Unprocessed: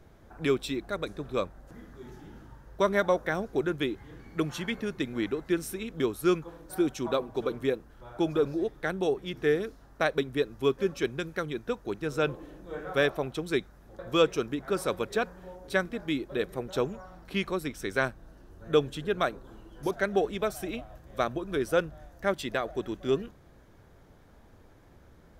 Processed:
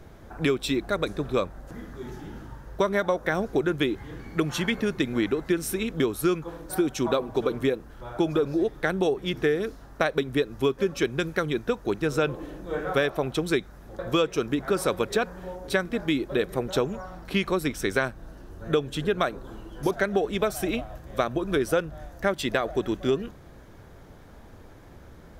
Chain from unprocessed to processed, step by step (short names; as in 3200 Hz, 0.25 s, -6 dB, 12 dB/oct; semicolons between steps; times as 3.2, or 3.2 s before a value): compressor, threshold -28 dBFS, peak gain reduction 10.5 dB; gain +8 dB